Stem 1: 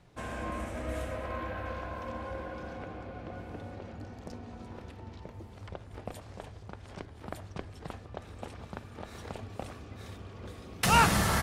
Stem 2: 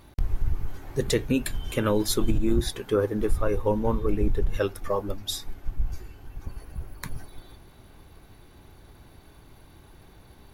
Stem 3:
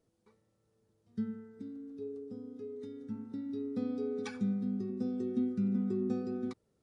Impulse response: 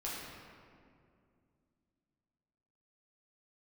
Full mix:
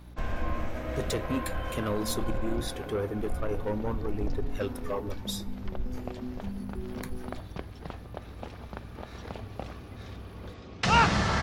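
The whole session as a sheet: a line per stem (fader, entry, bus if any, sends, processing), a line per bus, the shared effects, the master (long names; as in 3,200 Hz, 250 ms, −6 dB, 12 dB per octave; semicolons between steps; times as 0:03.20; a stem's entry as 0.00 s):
+1.0 dB, 0.00 s, no send, low-pass filter 5,900 Hz 24 dB per octave
−4.5 dB, 0.00 s, send −23 dB, soft clipping −20 dBFS, distortion −13 dB; mains hum 60 Hz, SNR 15 dB
−7.0 dB, 0.85 s, no send, no processing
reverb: on, RT60 2.3 s, pre-delay 6 ms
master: no processing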